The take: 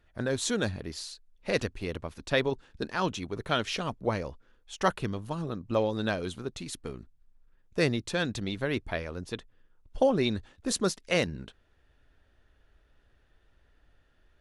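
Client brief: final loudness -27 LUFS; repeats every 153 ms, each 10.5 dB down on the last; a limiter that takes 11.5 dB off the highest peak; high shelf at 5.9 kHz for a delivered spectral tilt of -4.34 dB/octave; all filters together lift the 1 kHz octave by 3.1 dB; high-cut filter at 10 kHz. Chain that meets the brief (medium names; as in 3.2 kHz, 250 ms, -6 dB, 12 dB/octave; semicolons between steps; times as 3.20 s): low-pass 10 kHz; peaking EQ 1 kHz +4 dB; treble shelf 5.9 kHz +5 dB; peak limiter -20 dBFS; feedback delay 153 ms, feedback 30%, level -10.5 dB; trim +6.5 dB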